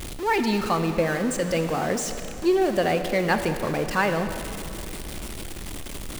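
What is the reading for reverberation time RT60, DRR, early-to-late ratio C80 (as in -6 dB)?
2.8 s, 7.5 dB, 9.0 dB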